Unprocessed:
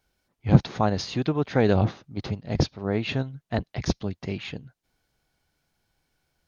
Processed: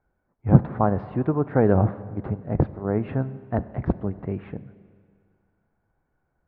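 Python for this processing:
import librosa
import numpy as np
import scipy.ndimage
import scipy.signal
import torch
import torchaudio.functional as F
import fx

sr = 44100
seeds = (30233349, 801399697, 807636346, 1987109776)

y = scipy.signal.sosfilt(scipy.signal.butter(4, 1500.0, 'lowpass', fs=sr, output='sos'), x)
y = fx.rev_schroeder(y, sr, rt60_s=2.1, comb_ms=31, drr_db=15.0)
y = y * librosa.db_to_amplitude(2.0)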